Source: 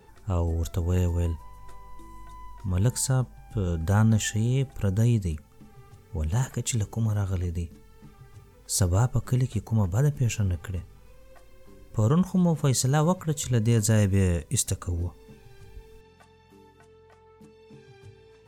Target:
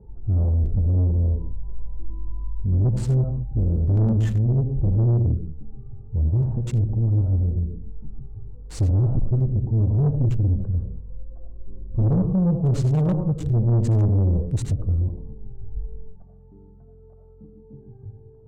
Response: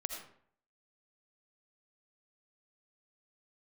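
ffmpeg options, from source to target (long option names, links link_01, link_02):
-filter_complex "[0:a]aresample=22050,aresample=44100[link_01];[1:a]atrim=start_sample=2205,afade=type=out:start_time=0.28:duration=0.01,atrim=end_sample=12789[link_02];[link_01][link_02]afir=irnorm=-1:irlink=0,acrossover=split=850[link_03][link_04];[link_04]aeval=exprs='val(0)*gte(abs(val(0)),0.0422)':channel_layout=same[link_05];[link_03][link_05]amix=inputs=2:normalize=0,aemphasis=mode=reproduction:type=riaa,asoftclip=type=tanh:threshold=-14dB,volume=-1.5dB"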